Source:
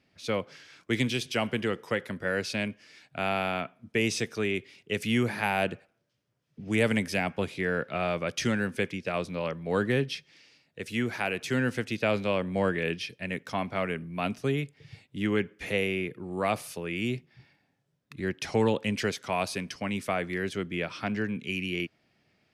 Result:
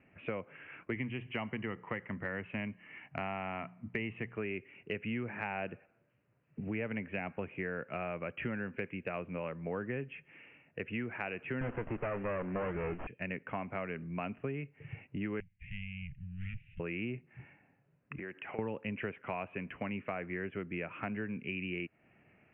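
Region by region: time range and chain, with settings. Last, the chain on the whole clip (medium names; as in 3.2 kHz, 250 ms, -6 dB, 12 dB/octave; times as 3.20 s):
0.92–4.37 s: hum notches 60/120/180 Hz + comb 1 ms, depth 42%
11.61–13.07 s: overdrive pedal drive 22 dB, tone 2.6 kHz, clips at -13.5 dBFS + sliding maximum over 17 samples
15.40–16.80 s: comb filter that takes the minimum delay 0.47 ms + inverse Chebyshev band-stop 390–980 Hz, stop band 70 dB + peaking EQ 2.5 kHz -7.5 dB 0.61 oct
18.18–18.59 s: high-pass 510 Hz 6 dB/octave + compression 10:1, threshold -42 dBFS
whole clip: steep low-pass 2.8 kHz 96 dB/octave; compression 4:1, threshold -42 dBFS; trim +4.5 dB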